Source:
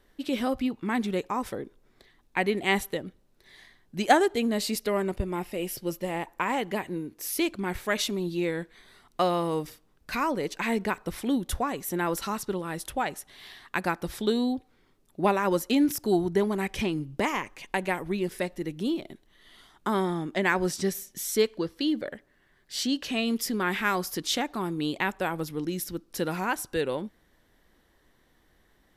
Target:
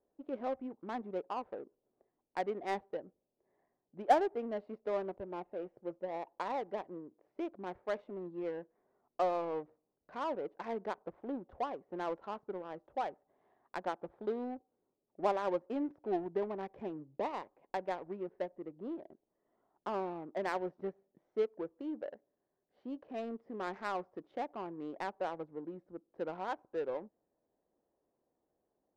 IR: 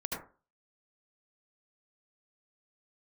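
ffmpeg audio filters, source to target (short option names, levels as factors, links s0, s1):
-af "bandpass=f=650:t=q:w=1.5:csg=0,adynamicsmooth=sensitivity=4:basefreq=690,volume=0.596"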